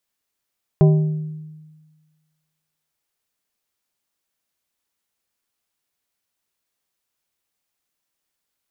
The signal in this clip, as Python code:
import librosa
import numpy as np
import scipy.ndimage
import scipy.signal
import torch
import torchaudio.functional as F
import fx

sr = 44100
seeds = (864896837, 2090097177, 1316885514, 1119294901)

y = fx.strike_glass(sr, length_s=2.11, level_db=-8, body='plate', hz=155.0, decay_s=1.47, tilt_db=7.0, modes=5)